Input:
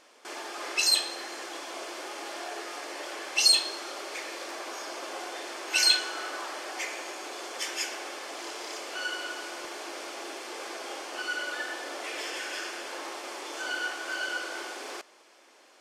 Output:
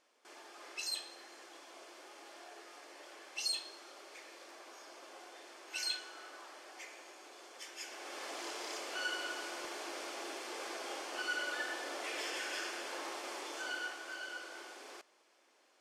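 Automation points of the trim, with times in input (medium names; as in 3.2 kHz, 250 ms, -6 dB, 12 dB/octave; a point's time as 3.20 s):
7.75 s -15.5 dB
8.23 s -4.5 dB
13.38 s -4.5 dB
14.22 s -12 dB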